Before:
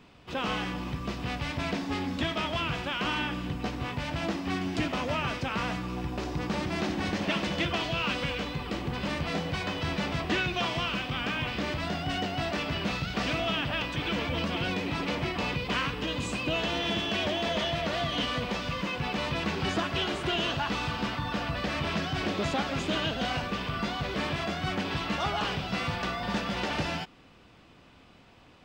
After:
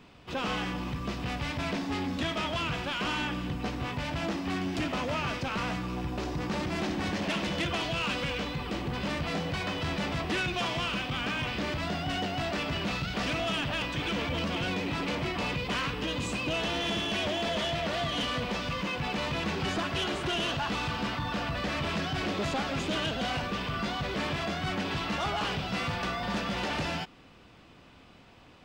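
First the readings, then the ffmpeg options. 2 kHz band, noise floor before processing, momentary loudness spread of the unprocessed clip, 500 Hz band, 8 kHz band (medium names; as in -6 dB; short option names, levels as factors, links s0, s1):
-1.0 dB, -55 dBFS, 4 LU, -1.0 dB, +1.0 dB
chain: -af "aeval=exprs='0.158*(cos(1*acos(clip(val(0)/0.158,-1,1)))-cos(1*PI/2))+0.0355*(cos(5*acos(clip(val(0)/0.158,-1,1)))-cos(5*PI/2))':c=same,volume=0.531"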